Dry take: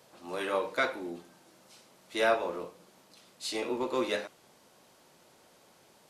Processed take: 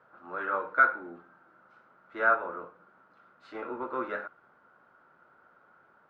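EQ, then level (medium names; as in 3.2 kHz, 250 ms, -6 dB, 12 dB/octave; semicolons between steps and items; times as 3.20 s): resonant low-pass 1.4 kHz, resonance Q 10; -6.0 dB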